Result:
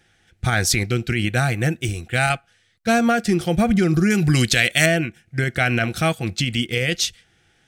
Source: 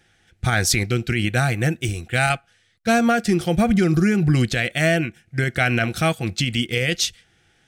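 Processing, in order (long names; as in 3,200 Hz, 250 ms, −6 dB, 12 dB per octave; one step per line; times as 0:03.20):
0:04.10–0:04.86: high-shelf EQ 2,300 Hz +12 dB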